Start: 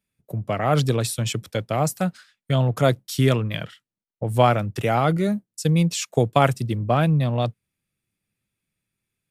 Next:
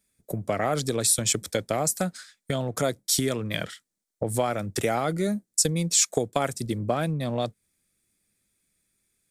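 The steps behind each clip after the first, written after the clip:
parametric band 2,800 Hz −9.5 dB 0.29 octaves
downward compressor 4 to 1, threshold −27 dBFS, peak gain reduction 14 dB
graphic EQ with 10 bands 125 Hz −10 dB, 1,000 Hz −5 dB, 8,000 Hz +8 dB
level +6.5 dB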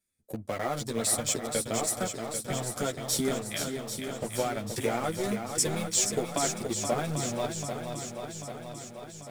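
in parallel at −3 dB: centre clipping without the shift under −23.5 dBFS
on the sum: multi-voice chorus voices 4, 0.37 Hz, delay 11 ms, depth 2.9 ms
feedback echo with a long and a short gap by turns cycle 791 ms, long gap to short 1.5 to 1, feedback 57%, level −6.5 dB
level −6.5 dB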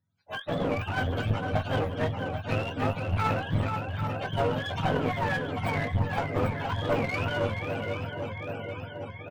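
frequency axis turned over on the octave scale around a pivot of 590 Hz
asymmetric clip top −37 dBFS
double-tracking delay 19 ms −12 dB
level +6.5 dB

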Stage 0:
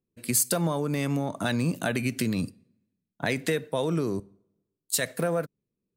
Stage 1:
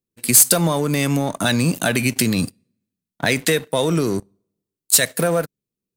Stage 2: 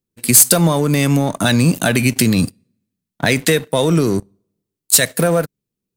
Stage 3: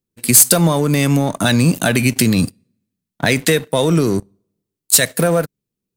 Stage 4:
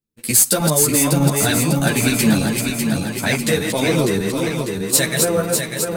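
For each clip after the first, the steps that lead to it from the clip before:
high-shelf EQ 3,000 Hz +9 dB; leveller curve on the samples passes 2
low-shelf EQ 240 Hz +4.5 dB; level +2.5 dB
no processing that can be heard
feedback delay that plays each chunk backwards 299 ms, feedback 76%, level −3.5 dB; string-ensemble chorus; level −1 dB

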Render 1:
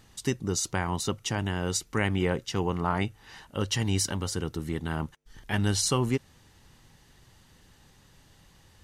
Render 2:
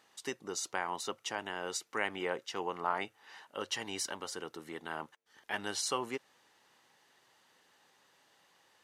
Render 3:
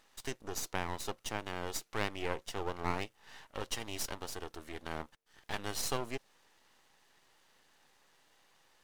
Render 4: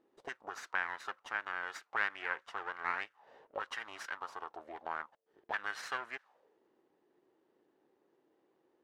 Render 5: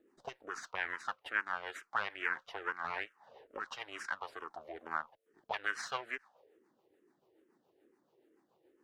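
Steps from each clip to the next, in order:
high-pass filter 520 Hz 12 dB per octave; high-shelf EQ 3,600 Hz −7.5 dB; level −2.5 dB
half-wave rectification; dynamic equaliser 1,600 Hz, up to −4 dB, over −51 dBFS, Q 0.73; level +3.5 dB
envelope filter 330–1,600 Hz, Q 4, up, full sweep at −34.5 dBFS; level +10.5 dB
rotating-speaker cabinet horn 7 Hz; frequency shifter mixed with the dry sound −2.3 Hz; level +7 dB

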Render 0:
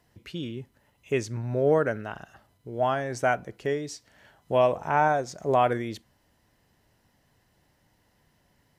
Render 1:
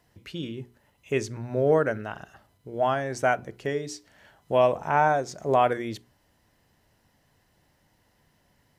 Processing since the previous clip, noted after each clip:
mains-hum notches 60/120/180/240/300/360/420 Hz
level +1 dB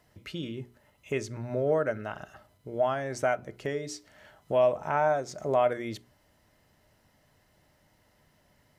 downward compressor 1.5 to 1, threshold −35 dBFS, peak gain reduction 7 dB
hollow resonant body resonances 610/1,300/2,100 Hz, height 9 dB, ringing for 90 ms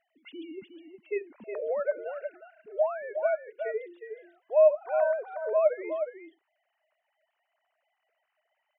three sine waves on the formant tracks
single-tap delay 363 ms −8 dB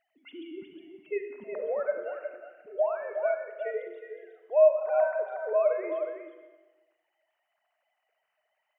convolution reverb RT60 1.2 s, pre-delay 33 ms, DRR 6 dB
level −1 dB

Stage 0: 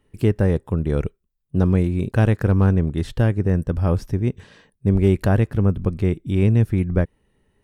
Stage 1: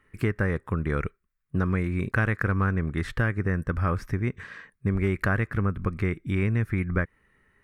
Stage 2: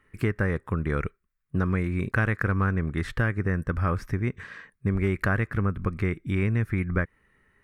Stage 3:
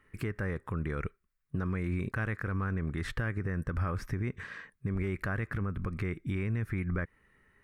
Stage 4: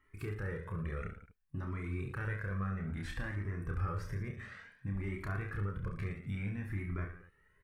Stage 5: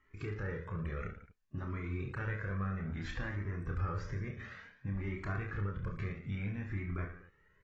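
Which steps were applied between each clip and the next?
flat-topped bell 1,600 Hz +14 dB 1.3 octaves; downward compressor 2.5 to 1, threshold −19 dBFS, peak gain reduction 6.5 dB; level −3.5 dB
no processing that can be heard
brickwall limiter −22 dBFS, peak gain reduction 11 dB; level −1.5 dB
reverse bouncing-ball delay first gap 30 ms, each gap 1.25×, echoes 5; flanger whose copies keep moving one way rising 0.58 Hz; level −3 dB
AAC 24 kbit/s 32,000 Hz

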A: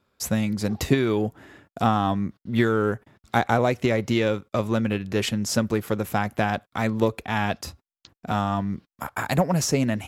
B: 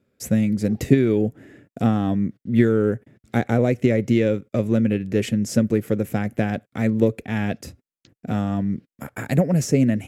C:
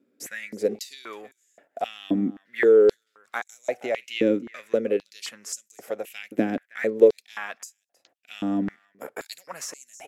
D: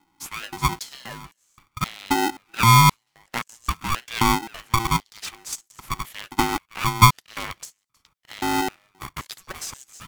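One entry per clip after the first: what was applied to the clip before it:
octave-band graphic EQ 125/250/500/1,000/2,000/4,000/8,000 Hz +8/+8/+8/−11/+6/−5/+3 dB; level −4.5 dB
single-tap delay 318 ms −21 dB; high-pass on a step sequencer 3.8 Hz 280–6,900 Hz; level −4.5 dB
ring modulator with a square carrier 570 Hz; level +2 dB

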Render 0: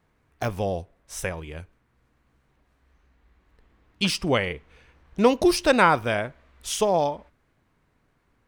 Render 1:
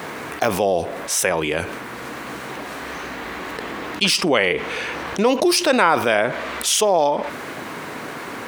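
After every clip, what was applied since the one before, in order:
high-pass filter 280 Hz 12 dB per octave
envelope flattener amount 70%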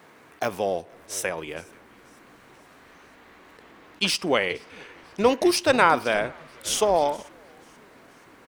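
echo with shifted repeats 480 ms, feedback 57%, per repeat −100 Hz, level −15 dB
expander for the loud parts 2.5 to 1, over −27 dBFS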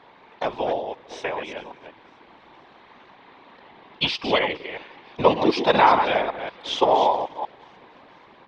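delay that plays each chunk backwards 191 ms, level −8 dB
loudspeaker in its box 130–4,100 Hz, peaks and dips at 160 Hz −7 dB, 890 Hz +9 dB, 1,400 Hz −5 dB, 3,600 Hz +6 dB
random phases in short frames

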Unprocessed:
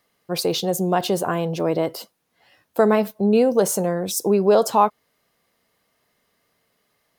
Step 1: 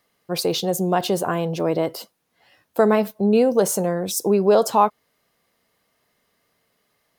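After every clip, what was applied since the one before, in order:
no processing that can be heard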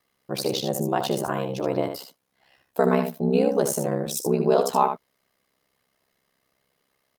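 single-tap delay 75 ms −7.5 dB
ring modulation 33 Hz
level −1.5 dB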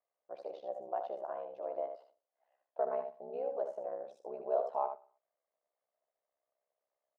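four-pole ladder band-pass 690 Hz, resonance 65%
repeating echo 60 ms, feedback 55%, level −21 dB
level −6 dB

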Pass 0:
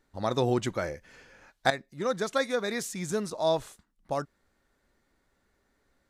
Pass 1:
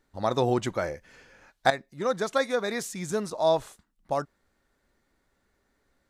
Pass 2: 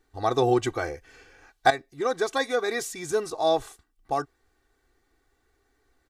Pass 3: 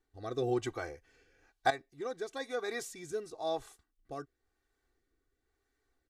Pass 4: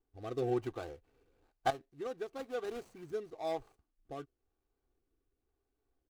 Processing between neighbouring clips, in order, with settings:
dynamic equaliser 810 Hz, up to +4 dB, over −41 dBFS, Q 0.93
comb filter 2.6 ms, depth 80%
rotating-speaker cabinet horn 1 Hz; level −9 dB
running median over 25 samples; level −1 dB

